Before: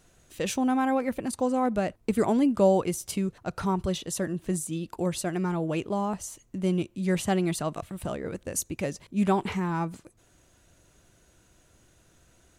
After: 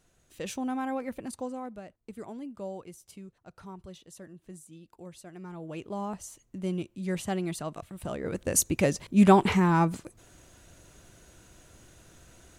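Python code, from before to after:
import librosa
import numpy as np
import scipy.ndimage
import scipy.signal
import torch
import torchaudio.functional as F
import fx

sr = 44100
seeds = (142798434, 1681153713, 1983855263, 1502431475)

y = fx.gain(x, sr, db=fx.line((1.34, -7.0), (1.83, -17.5), (5.26, -17.5), (6.03, -5.5), (7.95, -5.5), (8.53, 6.0)))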